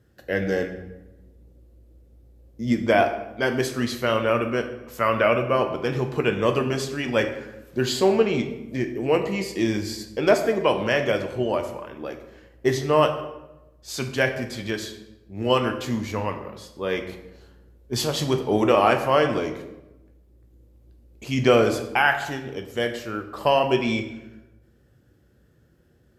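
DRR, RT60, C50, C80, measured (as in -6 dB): 5.5 dB, 0.95 s, 9.0 dB, 11.0 dB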